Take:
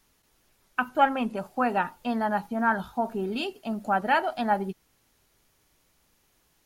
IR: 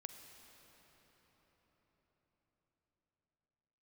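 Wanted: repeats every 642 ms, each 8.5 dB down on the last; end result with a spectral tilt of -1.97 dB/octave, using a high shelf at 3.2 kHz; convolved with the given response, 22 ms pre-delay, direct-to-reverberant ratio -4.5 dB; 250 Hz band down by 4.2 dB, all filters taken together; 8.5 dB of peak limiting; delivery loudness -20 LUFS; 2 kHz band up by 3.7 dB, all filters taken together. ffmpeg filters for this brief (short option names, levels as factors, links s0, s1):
-filter_complex "[0:a]equalizer=f=250:t=o:g=-5,equalizer=f=2000:t=o:g=3,highshelf=f=3200:g=7.5,alimiter=limit=0.158:level=0:latency=1,aecho=1:1:642|1284|1926|2568:0.376|0.143|0.0543|0.0206,asplit=2[s0][s1];[1:a]atrim=start_sample=2205,adelay=22[s2];[s1][s2]afir=irnorm=-1:irlink=0,volume=2.82[s3];[s0][s3]amix=inputs=2:normalize=0,volume=1.5"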